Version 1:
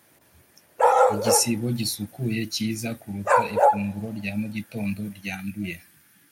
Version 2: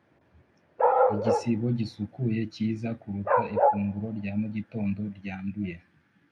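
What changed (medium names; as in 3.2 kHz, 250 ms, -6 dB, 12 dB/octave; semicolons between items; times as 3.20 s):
background: add distance through air 320 m; master: add tape spacing loss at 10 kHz 37 dB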